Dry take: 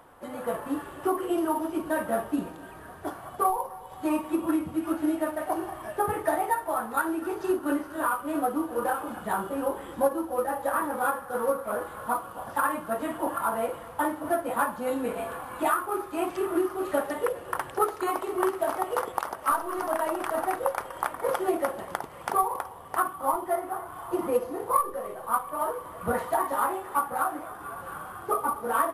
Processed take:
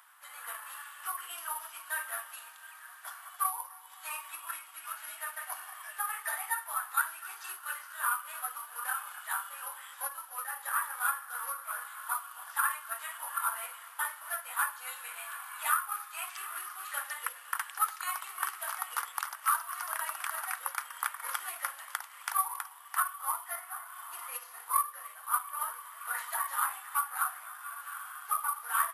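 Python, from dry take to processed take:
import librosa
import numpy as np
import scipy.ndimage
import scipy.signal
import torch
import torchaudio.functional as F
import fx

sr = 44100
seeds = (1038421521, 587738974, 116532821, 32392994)

y = scipy.signal.sosfilt(scipy.signal.cheby2(4, 80, 210.0, 'highpass', fs=sr, output='sos'), x)
y = fx.high_shelf(y, sr, hz=6100.0, db=6.5)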